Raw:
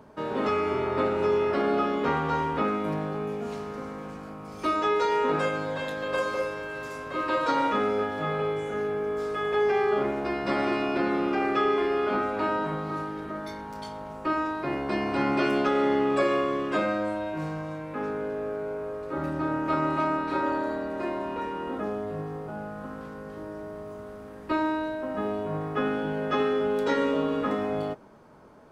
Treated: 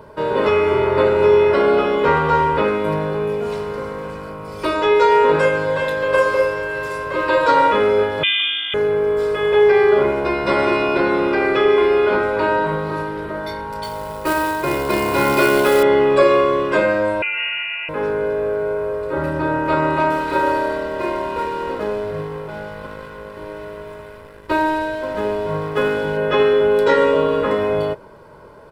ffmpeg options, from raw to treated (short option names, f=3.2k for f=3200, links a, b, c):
-filter_complex "[0:a]asettb=1/sr,asplit=3[a][b][c];[a]atrim=end=8.234[d];[b]atrim=start=8.23:end=8.74,asetpts=PTS-STARTPTS,afade=t=in:d=0.004:c=qsin,afade=t=out:st=0.506:d=0.004:c=qsin,lowpass=f=3.1k:t=q:w=0.5098,lowpass=f=3.1k:t=q:w=0.6013,lowpass=f=3.1k:t=q:w=0.9,lowpass=f=3.1k:t=q:w=2.563,afreqshift=-3700[e];[c]atrim=start=8.736[f];[d][e]acrossfade=d=0.004:c1=hsin:c2=qsin[g];[g][f]acrossfade=d=0.004:c1=qsin:c2=hsin,asettb=1/sr,asplit=3[h][i][j];[h]atrim=end=13.834[k];[i]atrim=start=13.83:end=15.83,asetpts=PTS-STARTPTS,afade=t=in:d=0.004:c=qsin,afade=t=out:st=1.996:d=0.004:c=qsin,acrusher=bits=3:mode=log:mix=0:aa=0.000001[l];[j]atrim=start=15.826[m];[k][l]acrossfade=d=0.004:c1=hsin:c2=qsin[n];[n][m]acrossfade=d=0.004:c1=qsin:c2=hsin,asettb=1/sr,asplit=3[o][p][q];[o]atrim=end=17.224[r];[p]atrim=start=17.22:end=17.89,asetpts=PTS-STARTPTS,afade=t=in:d=0.004:c=qsin,afade=t=out:st=0.666:d=0.004:c=qsin,lowpass=f=2.6k:t=q:w=0.5098,lowpass=f=2.6k:t=q:w=0.6013,lowpass=f=2.6k:t=q:w=0.9,lowpass=f=2.6k:t=q:w=2.563,afreqshift=-3000[s];[q]atrim=start=17.886[t];[r][s]acrossfade=d=0.004:c1=hsin:c2=qsin[u];[u][t]acrossfade=d=0.004:c1=qsin:c2=hsin,asettb=1/sr,asplit=3[v][w][x];[v]atrim=end=20.104[y];[w]atrim=start=20.1:end=26.17,asetpts=PTS-STARTPTS,afade=t=in:d=0.004:c=qsin,afade=t=out:st=6.066:d=0.004:c=qsin,aeval=exprs='sgn(val(0))*max(abs(val(0))-0.00668,0)':c=same[z];[x]atrim=start=26.166[aa];[y][z]acrossfade=d=0.004:c1=hsin:c2=qsin[ab];[ab][aa]acrossfade=d=0.004:c1=qsin:c2=hsin,equalizer=f=6.4k:t=o:w=0.35:g=-7.5,aecho=1:1:2:0.6,volume=9dB"